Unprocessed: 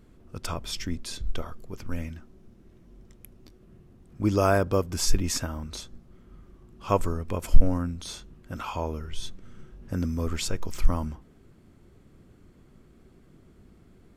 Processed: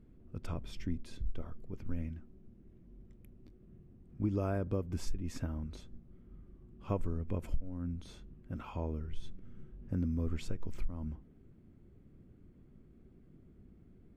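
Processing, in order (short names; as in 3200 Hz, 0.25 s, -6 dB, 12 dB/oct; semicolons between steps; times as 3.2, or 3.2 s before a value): EQ curve 250 Hz 0 dB, 1100 Hz -11 dB, 2300 Hz -9 dB, 5300 Hz -18 dB; compressor 16:1, threshold -24 dBFS, peak gain reduction 19.5 dB; gain -3.5 dB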